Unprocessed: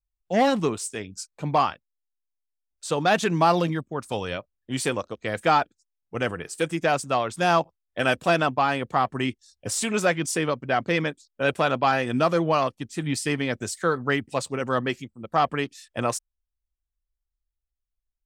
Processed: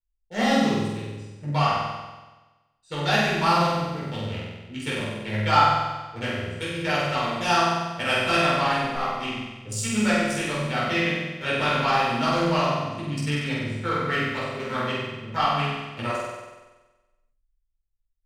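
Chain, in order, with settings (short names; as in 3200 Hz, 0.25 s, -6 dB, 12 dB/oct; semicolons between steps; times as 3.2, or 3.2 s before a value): Wiener smoothing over 41 samples; passive tone stack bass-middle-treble 5-5-5; 8.82–9.23 tube stage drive 29 dB, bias 0.7; on a send: flutter echo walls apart 8.1 m, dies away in 1.2 s; on the sum: shoebox room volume 300 m³, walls furnished, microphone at 4.4 m; gain +4.5 dB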